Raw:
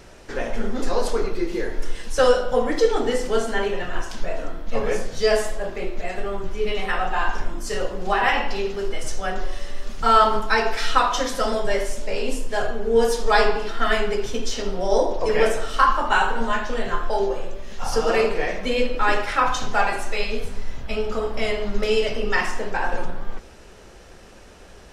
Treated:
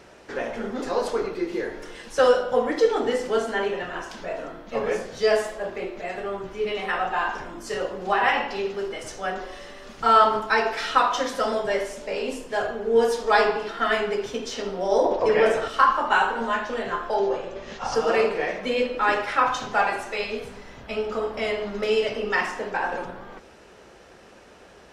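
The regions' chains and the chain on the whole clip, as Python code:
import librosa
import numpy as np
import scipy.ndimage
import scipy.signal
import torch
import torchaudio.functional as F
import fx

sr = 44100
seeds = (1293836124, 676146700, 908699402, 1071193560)

y = fx.chain(x, sr, fx.high_shelf(hz=7100.0, db=-10.0),
    fx.env_flatten(amount_pct=50), at=(15.04, 15.68))
y = fx.chain(y, sr, fx.lowpass(hz=7200.0, slope=24),
    fx.env_flatten(amount_pct=50), at=(17.14, 17.95))
y = fx.highpass(y, sr, hz=230.0, slope=6)
y = fx.high_shelf(y, sr, hz=4500.0, db=-8.5)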